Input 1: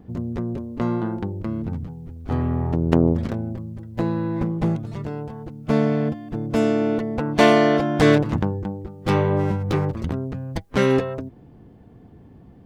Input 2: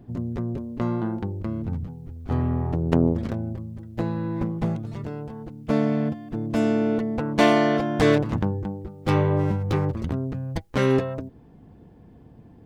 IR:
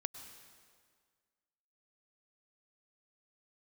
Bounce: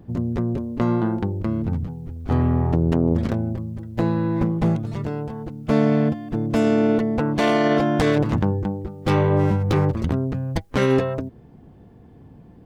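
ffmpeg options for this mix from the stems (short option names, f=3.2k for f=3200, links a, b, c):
-filter_complex "[0:a]volume=-3.5dB[a];[1:a]volume=0dB[b];[a][b]amix=inputs=2:normalize=0,alimiter=limit=-10dB:level=0:latency=1:release=19"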